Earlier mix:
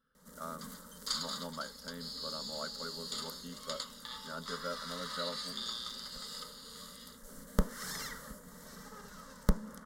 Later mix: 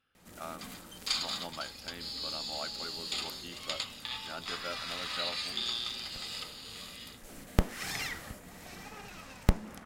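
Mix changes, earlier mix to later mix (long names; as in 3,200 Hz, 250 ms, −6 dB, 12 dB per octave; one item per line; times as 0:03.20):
speech: add low-shelf EQ 460 Hz −7.5 dB
master: remove phaser with its sweep stopped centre 500 Hz, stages 8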